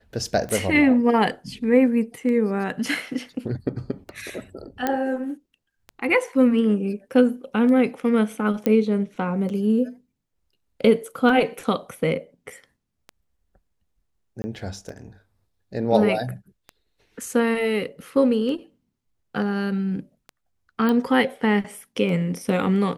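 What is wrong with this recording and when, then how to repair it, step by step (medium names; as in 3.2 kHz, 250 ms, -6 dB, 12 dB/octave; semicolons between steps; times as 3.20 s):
tick 33 1/3 rpm -22 dBFS
4.87 s: pop -9 dBFS
8.66 s: pop -10 dBFS
14.42–14.44 s: dropout 20 ms
20.89 s: pop -12 dBFS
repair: de-click; interpolate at 14.42 s, 20 ms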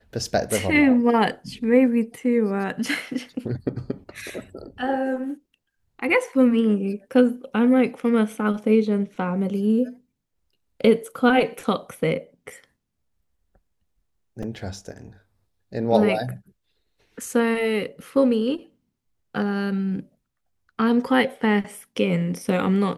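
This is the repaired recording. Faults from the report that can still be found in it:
nothing left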